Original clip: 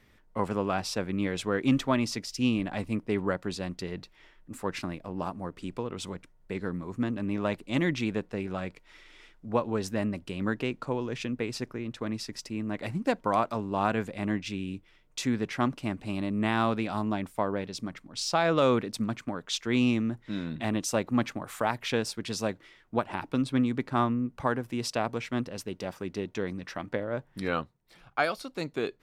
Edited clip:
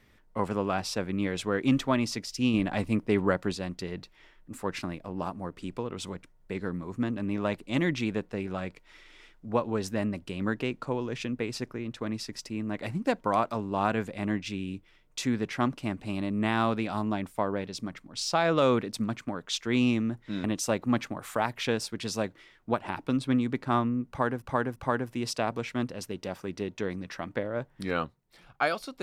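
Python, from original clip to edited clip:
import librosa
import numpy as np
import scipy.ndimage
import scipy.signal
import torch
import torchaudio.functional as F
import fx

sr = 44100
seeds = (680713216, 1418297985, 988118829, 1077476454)

y = fx.edit(x, sr, fx.clip_gain(start_s=2.54, length_s=0.98, db=3.5),
    fx.cut(start_s=20.44, length_s=0.25),
    fx.repeat(start_s=24.33, length_s=0.34, count=3), tone=tone)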